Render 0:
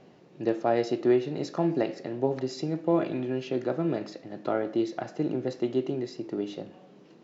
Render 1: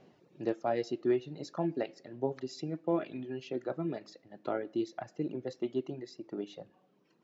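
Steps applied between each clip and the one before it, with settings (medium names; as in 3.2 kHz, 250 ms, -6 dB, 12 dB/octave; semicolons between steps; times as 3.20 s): reverb removal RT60 2 s; trim -5.5 dB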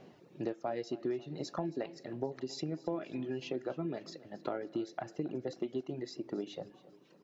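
compression 5:1, threshold -38 dBFS, peak gain reduction 13 dB; feedback delay 273 ms, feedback 50%, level -19 dB; trim +4.5 dB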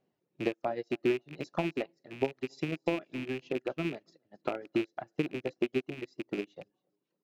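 rattle on loud lows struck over -45 dBFS, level -32 dBFS; upward expansion 2.5:1, over -52 dBFS; trim +8.5 dB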